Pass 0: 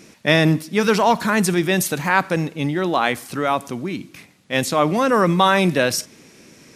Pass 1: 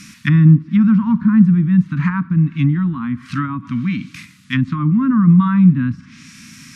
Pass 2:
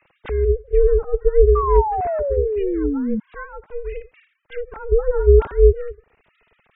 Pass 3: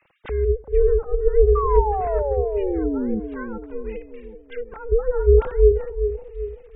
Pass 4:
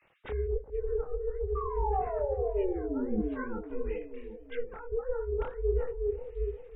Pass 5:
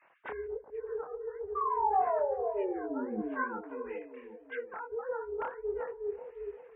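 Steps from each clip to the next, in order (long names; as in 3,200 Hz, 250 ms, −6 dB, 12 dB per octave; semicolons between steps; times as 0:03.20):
treble cut that deepens with the level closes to 540 Hz, closed at −16.5 dBFS; harmonic and percussive parts rebalanced harmonic +6 dB; inverse Chebyshev band-stop filter 370–790 Hz, stop band 40 dB; level +5 dB
three sine waves on the formant tracks; ring modulation 240 Hz; sound drawn into the spectrogram fall, 0:01.55–0:03.20, 210–1,200 Hz −21 dBFS; level −1 dB
bucket-brigade delay 384 ms, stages 2,048, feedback 47%, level −9 dB; level −2.5 dB
reversed playback; downward compressor 10 to 1, threshold −23 dBFS, peak gain reduction 15 dB; reversed playback; micro pitch shift up and down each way 54 cents
loudspeaker in its box 280–2,700 Hz, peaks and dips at 440 Hz −5 dB, 680 Hz +5 dB, 1,000 Hz +9 dB, 1,600 Hz +7 dB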